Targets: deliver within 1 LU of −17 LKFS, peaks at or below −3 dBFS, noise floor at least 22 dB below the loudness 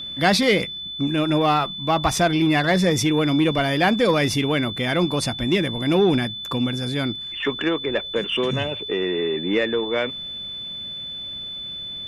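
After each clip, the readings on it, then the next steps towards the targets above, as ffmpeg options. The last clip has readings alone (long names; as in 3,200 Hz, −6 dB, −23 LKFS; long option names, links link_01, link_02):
interfering tone 3,500 Hz; level of the tone −30 dBFS; integrated loudness −21.5 LKFS; sample peak −5.5 dBFS; target loudness −17.0 LKFS
→ -af "bandreject=frequency=3500:width=30"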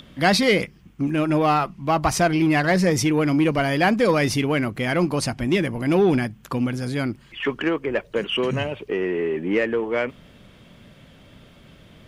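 interfering tone none found; integrated loudness −22.0 LKFS; sample peak −6.0 dBFS; target loudness −17.0 LKFS
→ -af "volume=5dB,alimiter=limit=-3dB:level=0:latency=1"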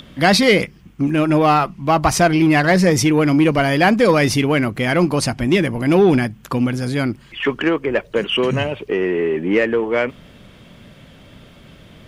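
integrated loudness −17.0 LKFS; sample peak −3.0 dBFS; background noise floor −46 dBFS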